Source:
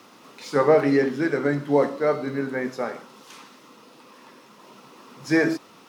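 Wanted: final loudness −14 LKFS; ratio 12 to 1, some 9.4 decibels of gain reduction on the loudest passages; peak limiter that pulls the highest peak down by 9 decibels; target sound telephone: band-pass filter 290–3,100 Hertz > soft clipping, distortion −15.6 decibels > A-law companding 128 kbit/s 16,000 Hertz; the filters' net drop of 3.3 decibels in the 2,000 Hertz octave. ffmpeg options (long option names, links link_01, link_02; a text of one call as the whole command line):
ffmpeg -i in.wav -af "equalizer=frequency=2000:width_type=o:gain=-3.5,acompressor=threshold=-21dB:ratio=12,alimiter=limit=-21dB:level=0:latency=1,highpass=290,lowpass=3100,asoftclip=threshold=-27dB,volume=21dB" -ar 16000 -c:a pcm_alaw out.wav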